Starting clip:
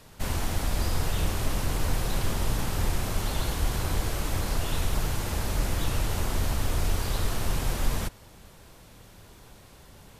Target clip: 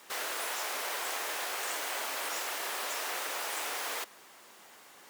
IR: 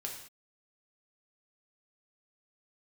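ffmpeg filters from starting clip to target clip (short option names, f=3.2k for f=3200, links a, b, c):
-af "afftfilt=real='re*lt(hypot(re,im),0.141)':imag='im*lt(hypot(re,im),0.141)':win_size=1024:overlap=0.75,highpass=290,asetrate=88200,aresample=44100"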